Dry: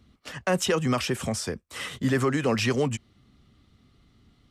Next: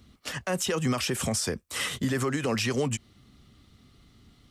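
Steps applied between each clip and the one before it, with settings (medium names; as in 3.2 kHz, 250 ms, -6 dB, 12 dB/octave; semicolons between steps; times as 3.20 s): treble shelf 4.7 kHz +7.5 dB; compression 3:1, threshold -26 dBFS, peak gain reduction 6 dB; peak limiter -21 dBFS, peak gain reduction 7.5 dB; trim +2.5 dB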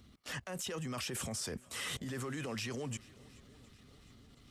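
level held to a coarse grid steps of 20 dB; transient shaper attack -7 dB, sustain -2 dB; shuffle delay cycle 716 ms, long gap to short 1.5:1, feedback 51%, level -23 dB; trim +1 dB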